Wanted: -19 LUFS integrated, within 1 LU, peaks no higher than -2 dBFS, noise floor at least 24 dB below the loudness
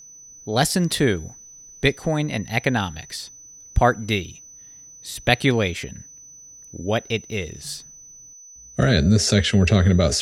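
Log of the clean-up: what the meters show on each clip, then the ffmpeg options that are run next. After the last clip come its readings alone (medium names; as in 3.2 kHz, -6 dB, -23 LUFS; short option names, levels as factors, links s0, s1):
steady tone 6 kHz; tone level -42 dBFS; loudness -21.0 LUFS; peak level -2.5 dBFS; loudness target -19.0 LUFS
-> -af "bandreject=f=6000:w=30"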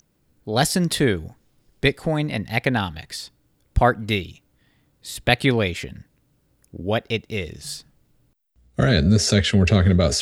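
steady tone not found; loudness -21.0 LUFS; peak level -2.5 dBFS; loudness target -19.0 LUFS
-> -af "volume=1.26,alimiter=limit=0.794:level=0:latency=1"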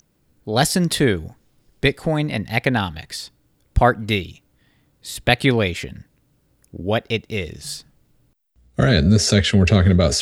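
loudness -19.0 LUFS; peak level -2.0 dBFS; noise floor -64 dBFS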